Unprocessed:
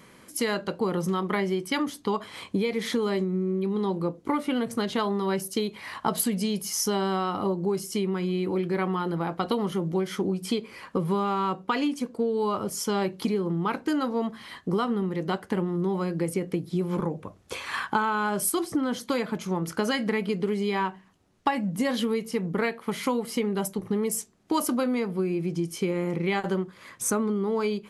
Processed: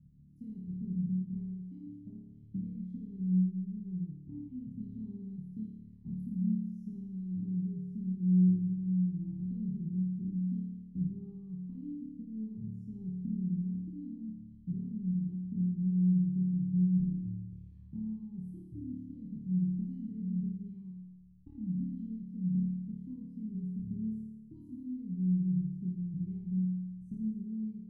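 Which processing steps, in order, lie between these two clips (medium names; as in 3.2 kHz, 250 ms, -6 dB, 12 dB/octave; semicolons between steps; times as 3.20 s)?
inverse Chebyshev low-pass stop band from 530 Hz, stop band 60 dB; 1.39–2.35 s: compression 2:1, threshold -49 dBFS, peak gain reduction 7 dB; on a send: flutter echo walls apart 4.7 m, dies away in 1.2 s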